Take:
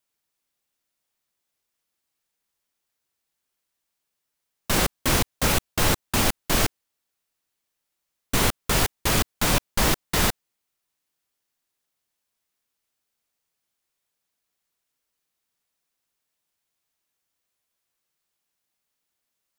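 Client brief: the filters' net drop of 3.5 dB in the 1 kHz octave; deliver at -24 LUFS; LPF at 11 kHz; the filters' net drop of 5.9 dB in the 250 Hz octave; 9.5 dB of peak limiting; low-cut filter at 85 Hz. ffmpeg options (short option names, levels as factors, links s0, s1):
-af "highpass=85,lowpass=11000,equalizer=f=250:t=o:g=-8,equalizer=f=1000:t=o:g=-4,volume=2.37,alimiter=limit=0.224:level=0:latency=1"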